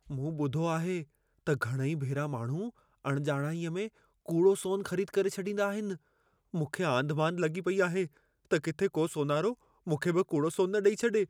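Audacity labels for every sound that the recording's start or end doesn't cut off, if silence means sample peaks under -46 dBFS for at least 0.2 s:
1.470000	2.700000	sound
3.050000	3.880000	sound
4.260000	5.970000	sound
6.540000	8.070000	sound
8.510000	9.540000	sound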